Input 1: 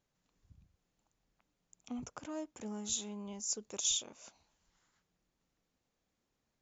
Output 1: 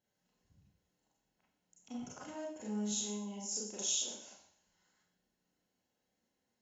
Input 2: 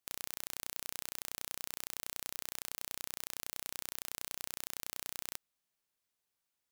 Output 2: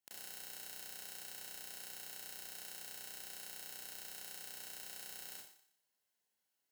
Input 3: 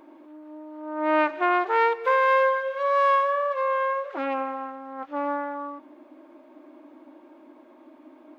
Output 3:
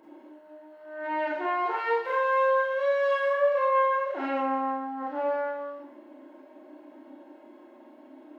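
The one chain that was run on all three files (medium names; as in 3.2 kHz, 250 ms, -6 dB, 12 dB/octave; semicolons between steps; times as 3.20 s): peak limiter -18 dBFS; comb of notches 1.2 kHz; thinning echo 120 ms, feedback 33%, level -16 dB; Schroeder reverb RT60 0.46 s, combs from 30 ms, DRR -5 dB; trim -5 dB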